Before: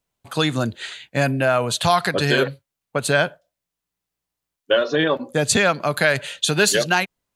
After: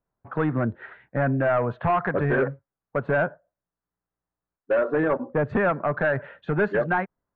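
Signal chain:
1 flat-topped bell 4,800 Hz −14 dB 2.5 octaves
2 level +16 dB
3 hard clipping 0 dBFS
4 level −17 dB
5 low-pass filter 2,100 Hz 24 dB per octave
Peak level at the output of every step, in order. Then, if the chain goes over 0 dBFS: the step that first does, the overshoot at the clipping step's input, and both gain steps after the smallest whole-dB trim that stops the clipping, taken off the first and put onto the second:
−6.5, +9.5, 0.0, −17.0, −15.5 dBFS
step 2, 9.5 dB
step 2 +6 dB, step 4 −7 dB

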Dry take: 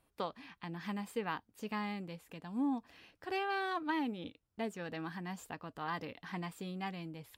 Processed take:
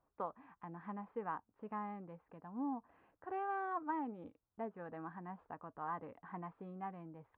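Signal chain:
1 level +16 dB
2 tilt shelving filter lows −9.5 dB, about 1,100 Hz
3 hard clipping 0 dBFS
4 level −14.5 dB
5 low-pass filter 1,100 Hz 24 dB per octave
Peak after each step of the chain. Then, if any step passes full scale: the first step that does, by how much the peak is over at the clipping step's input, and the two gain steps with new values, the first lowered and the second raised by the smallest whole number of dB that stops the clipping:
−8.0, −5.0, −5.0, −19.5, −28.5 dBFS
no step passes full scale

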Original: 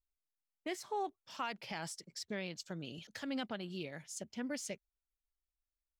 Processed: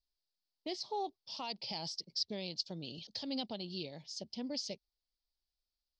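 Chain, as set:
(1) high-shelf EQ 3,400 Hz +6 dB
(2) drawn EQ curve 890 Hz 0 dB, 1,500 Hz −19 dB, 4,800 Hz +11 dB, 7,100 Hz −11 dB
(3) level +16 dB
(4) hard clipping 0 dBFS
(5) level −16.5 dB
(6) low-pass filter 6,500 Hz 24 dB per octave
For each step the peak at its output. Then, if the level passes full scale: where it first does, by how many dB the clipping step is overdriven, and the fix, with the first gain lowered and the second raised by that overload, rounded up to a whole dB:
−25.0, −20.5, −4.5, −4.5, −21.0, −21.5 dBFS
no step passes full scale

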